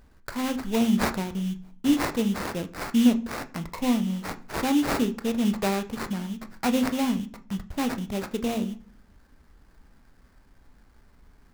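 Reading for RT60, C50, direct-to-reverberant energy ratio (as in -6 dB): 0.45 s, 17.0 dB, 9.0 dB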